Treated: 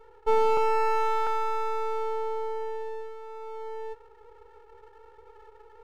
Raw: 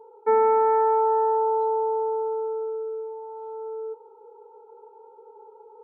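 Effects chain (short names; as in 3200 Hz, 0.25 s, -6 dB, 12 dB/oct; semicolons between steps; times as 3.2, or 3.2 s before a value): 0.57–1.27 steep low-pass 1900 Hz; half-wave rectifier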